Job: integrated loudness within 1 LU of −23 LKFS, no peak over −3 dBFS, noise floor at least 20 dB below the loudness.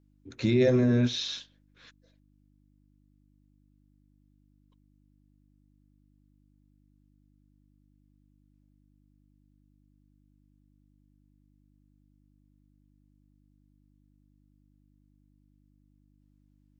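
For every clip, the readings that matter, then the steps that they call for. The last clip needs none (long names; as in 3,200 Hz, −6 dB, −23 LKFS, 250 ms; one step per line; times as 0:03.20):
mains hum 50 Hz; hum harmonics up to 300 Hz; level of the hum −63 dBFS; integrated loudness −26.0 LKFS; sample peak −13.5 dBFS; target loudness −23.0 LKFS
→ hum removal 50 Hz, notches 6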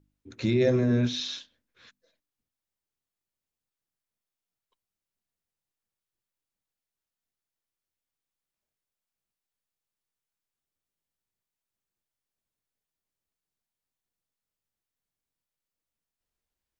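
mains hum none found; integrated loudness −26.0 LKFS; sample peak −13.0 dBFS; target loudness −23.0 LKFS
→ level +3 dB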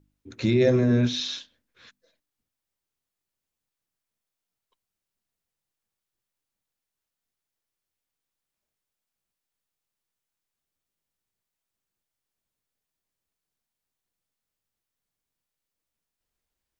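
integrated loudness −23.0 LKFS; sample peak −10.0 dBFS; background noise floor −87 dBFS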